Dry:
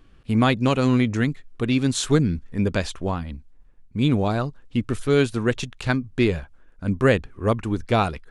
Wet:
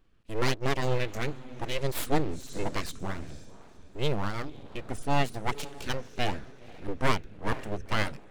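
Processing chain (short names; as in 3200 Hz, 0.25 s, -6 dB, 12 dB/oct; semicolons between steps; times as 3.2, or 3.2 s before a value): diffused feedback echo 0.501 s, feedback 40%, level -13 dB; spectral noise reduction 8 dB; full-wave rectifier; gain -4 dB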